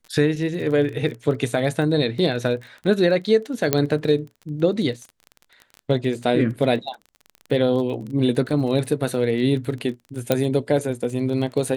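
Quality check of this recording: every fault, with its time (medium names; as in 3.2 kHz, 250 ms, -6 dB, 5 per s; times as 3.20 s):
crackle 20 per s -30 dBFS
3.73 s: pop -2 dBFS
10.32 s: pop -5 dBFS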